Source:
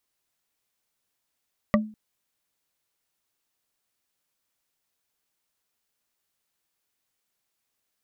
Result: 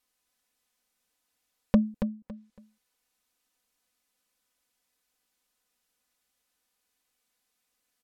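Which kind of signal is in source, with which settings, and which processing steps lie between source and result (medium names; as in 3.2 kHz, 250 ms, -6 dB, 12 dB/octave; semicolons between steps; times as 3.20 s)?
wood hit bar, length 0.20 s, lowest mode 215 Hz, modes 4, decay 0.37 s, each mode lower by 1 dB, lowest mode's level -15 dB
low-pass that closes with the level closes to 540 Hz, closed at -44 dBFS; comb 4 ms, depth 68%; on a send: feedback delay 279 ms, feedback 24%, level -8.5 dB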